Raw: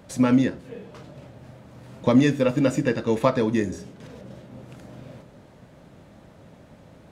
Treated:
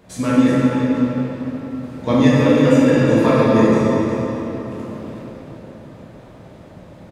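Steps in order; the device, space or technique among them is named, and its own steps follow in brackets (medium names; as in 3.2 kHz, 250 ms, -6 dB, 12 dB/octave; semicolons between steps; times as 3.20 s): cave (delay 367 ms -9.5 dB; reverberation RT60 4.0 s, pre-delay 3 ms, DRR -8.5 dB); trim -2 dB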